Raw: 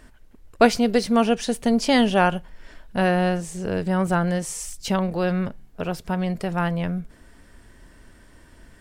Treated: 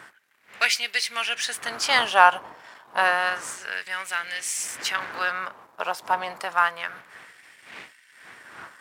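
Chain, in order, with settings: wind noise 120 Hz -19 dBFS; sample leveller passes 1; LFO high-pass sine 0.29 Hz 930–2200 Hz; gain -1 dB

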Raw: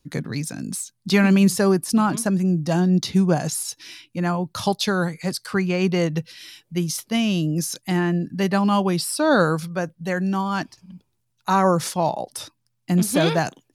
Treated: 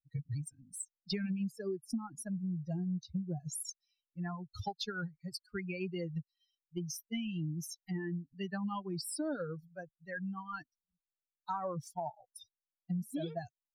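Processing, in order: per-bin expansion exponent 3; low shelf 420 Hz +11 dB; compressor 8:1, threshold -29 dBFS, peak gain reduction 22 dB; gain -5.5 dB

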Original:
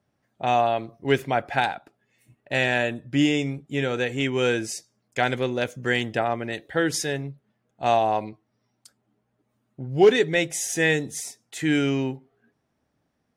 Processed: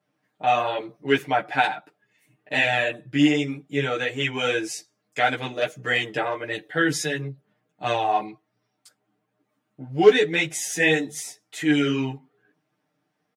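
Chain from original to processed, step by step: HPF 180 Hz 12 dB/oct; tilt +2 dB/oct; comb 6.6 ms, depth 96%; chorus voices 4, 1.5 Hz, delay 12 ms, depth 3 ms; tone controls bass +7 dB, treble -9 dB; gain +1.5 dB

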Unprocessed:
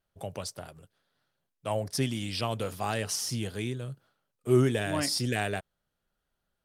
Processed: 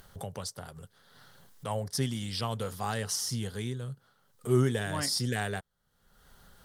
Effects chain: thirty-one-band EQ 315 Hz -10 dB, 630 Hz -7 dB, 2500 Hz -10 dB; upward compressor, threshold -35 dBFS

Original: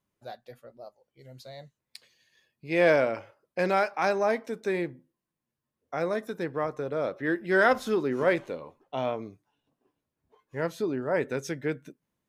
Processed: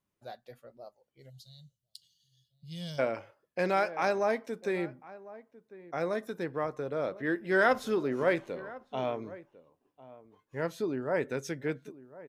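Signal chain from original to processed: outdoor echo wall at 180 m, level -18 dB; spectral gain 1.3–2.99, 210–2800 Hz -27 dB; gain -3 dB

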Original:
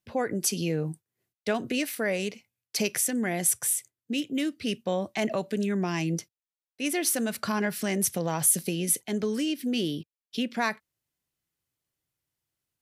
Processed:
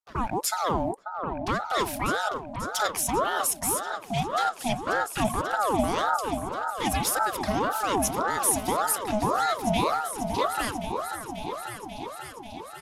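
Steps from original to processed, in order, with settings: sample leveller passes 2; downsampling 32000 Hz; envelope flanger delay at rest 6.2 ms, full sweep at -17 dBFS; on a send: repeats that get brighter 0.539 s, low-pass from 750 Hz, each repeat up 2 oct, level -6 dB; on the sum: ring modulator with a swept carrier 760 Hz, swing 45%, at 1.8 Hz; gain -1.5 dB

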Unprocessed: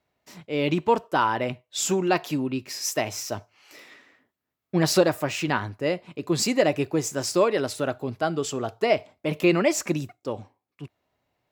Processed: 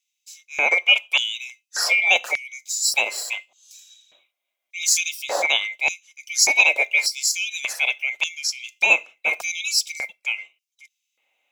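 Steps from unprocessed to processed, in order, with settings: band-swap scrambler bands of 2000 Hz; LFO high-pass square 0.85 Hz 570–5400 Hz; 3.26–4.92 notch comb 440 Hz; gain +4 dB

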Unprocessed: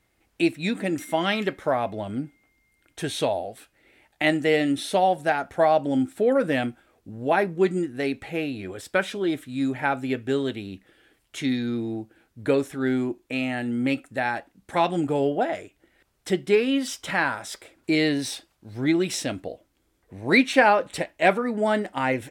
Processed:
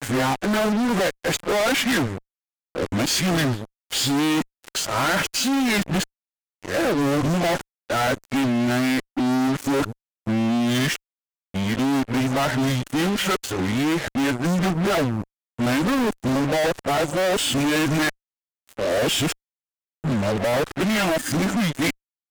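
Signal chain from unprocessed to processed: whole clip reversed; formant shift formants -3 st; fuzz box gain 39 dB, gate -40 dBFS; gain -6 dB

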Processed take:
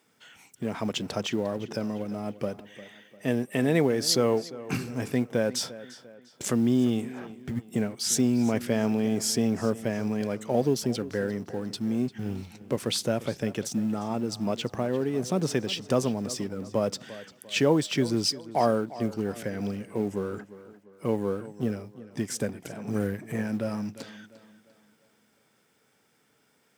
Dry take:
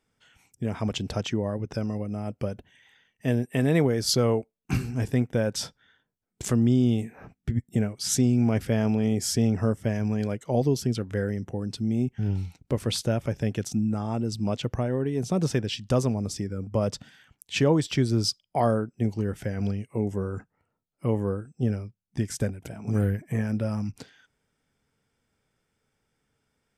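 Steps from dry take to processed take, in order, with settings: G.711 law mismatch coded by mu; HPF 190 Hz 12 dB/oct; tape echo 0.349 s, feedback 45%, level -15.5 dB, low-pass 5300 Hz

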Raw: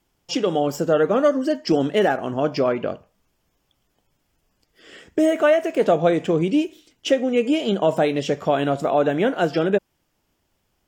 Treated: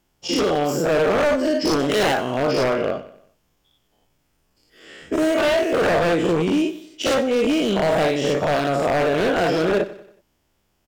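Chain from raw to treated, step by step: spectral dilation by 0.12 s; wavefolder -10.5 dBFS; 1.79–2.38 high shelf 3900 Hz +7 dB; feedback echo 93 ms, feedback 45%, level -16 dB; gain -3 dB

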